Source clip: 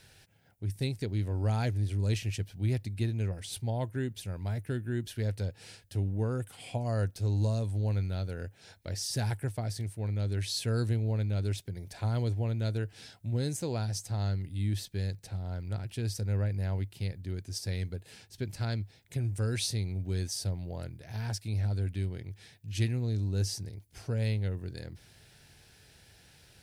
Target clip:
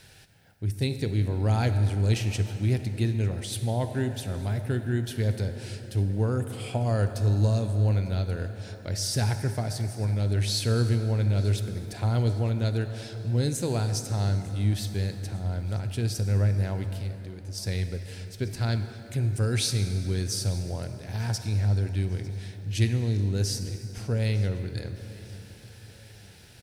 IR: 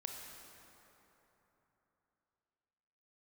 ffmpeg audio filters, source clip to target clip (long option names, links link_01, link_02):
-filter_complex "[0:a]asplit=2[link_01][link_02];[link_02]aecho=0:1:900|1800|2700|3600:0.0794|0.0405|0.0207|0.0105[link_03];[link_01][link_03]amix=inputs=2:normalize=0,asettb=1/sr,asplit=3[link_04][link_05][link_06];[link_04]atrim=end=16.964[link_07];[link_05]atrim=start=16.96:end=17.58,asetpts=PTS-STARTPTS,afade=type=in:duration=0.004:curve=qsin,afade=type=out:start_time=0.616:duration=0.004:curve=qsin,acompressor=threshold=-44dB:ratio=2.5[link_08];[link_06]atrim=start=17.576[link_09];[link_07][link_08]acrossfade=duration=0.004:curve1=hsin:curve2=qsin[link_10];[link_10][link_09]acrossfade=duration=0.004:curve1=qsin:curve2=hsin,asplit=2[link_11][link_12];[1:a]atrim=start_sample=2205[link_13];[link_12][link_13]afir=irnorm=-1:irlink=0,volume=2.5dB[link_14];[link_11][link_14]amix=inputs=2:normalize=0"